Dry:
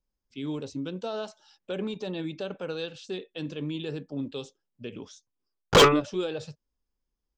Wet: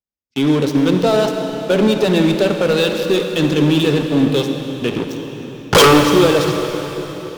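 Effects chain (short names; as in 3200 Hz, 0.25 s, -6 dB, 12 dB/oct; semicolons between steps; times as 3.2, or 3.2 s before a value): HPF 77 Hz 12 dB/oct; notch 7400 Hz; sample leveller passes 5; reverb RT60 4.2 s, pre-delay 49 ms, DRR 4.5 dB; gain +1 dB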